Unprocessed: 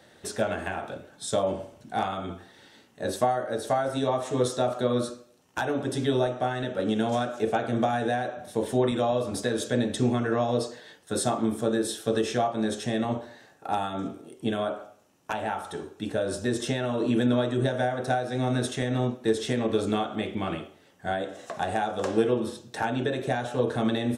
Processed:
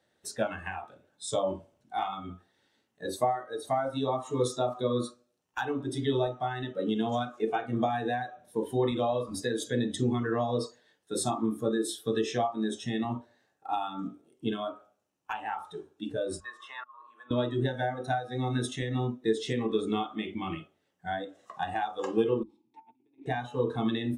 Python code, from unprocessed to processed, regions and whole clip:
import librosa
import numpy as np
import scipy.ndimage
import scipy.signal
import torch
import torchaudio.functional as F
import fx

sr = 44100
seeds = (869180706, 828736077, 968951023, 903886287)

y = fx.chain(x, sr, fx.highpass_res(hz=1100.0, q=6.5),
    fx.high_shelf(hz=2100.0, db=-11.5),
    fx.auto_swell(attack_ms=719.0), at=(16.4, 17.31))
y = fx.chain(y, sr, fx.vowel_filter(vowel='u'),
    fx.over_compress(threshold_db=-45.0, ratio=-0.5), at=(22.43, 23.26))
y = fx.hum_notches(y, sr, base_hz=50, count=5)
y = fx.noise_reduce_blind(y, sr, reduce_db=15)
y = y * librosa.db_to_amplitude(-2.5)